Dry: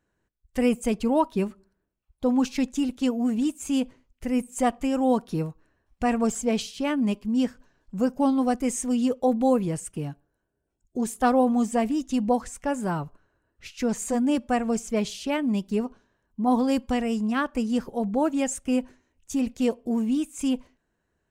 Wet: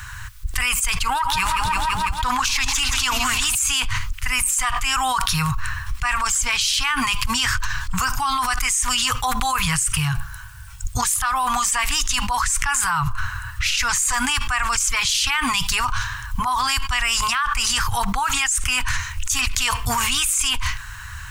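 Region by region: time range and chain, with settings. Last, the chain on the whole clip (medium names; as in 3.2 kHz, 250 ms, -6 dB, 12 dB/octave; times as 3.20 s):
1.05–3.55 s: self-modulated delay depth 0.052 ms + bucket-brigade echo 298 ms, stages 1024, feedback 49%, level -14 dB + modulated delay 167 ms, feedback 66%, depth 68 cents, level -16 dB
whole clip: elliptic band-stop 110–1100 Hz, stop band 40 dB; level flattener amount 100%; trim +5 dB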